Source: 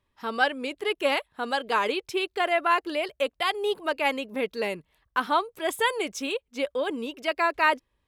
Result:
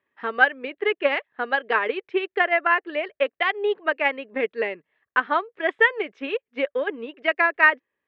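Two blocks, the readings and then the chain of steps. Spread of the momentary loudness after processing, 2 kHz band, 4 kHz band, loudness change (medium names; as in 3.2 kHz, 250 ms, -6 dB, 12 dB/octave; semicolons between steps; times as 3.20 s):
10 LU, +7.5 dB, -3.0 dB, +4.0 dB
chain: cabinet simulation 260–2800 Hz, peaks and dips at 420 Hz +3 dB, 940 Hz -4 dB, 1.8 kHz +9 dB; transient shaper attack +5 dB, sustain -4 dB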